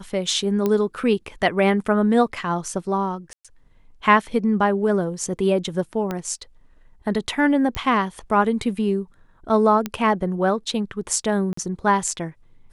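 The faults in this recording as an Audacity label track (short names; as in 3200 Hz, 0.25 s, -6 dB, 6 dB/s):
0.660000	0.660000	pop -10 dBFS
3.330000	3.450000	gap 0.116 s
6.110000	6.110000	pop -13 dBFS
7.750000	7.750000	pop -11 dBFS
9.860000	9.860000	pop -11 dBFS
11.530000	11.570000	gap 44 ms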